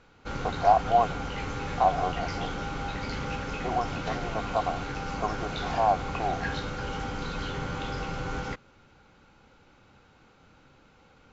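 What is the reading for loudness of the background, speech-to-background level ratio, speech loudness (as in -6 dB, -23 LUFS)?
-34.0 LUFS, 5.0 dB, -29.0 LUFS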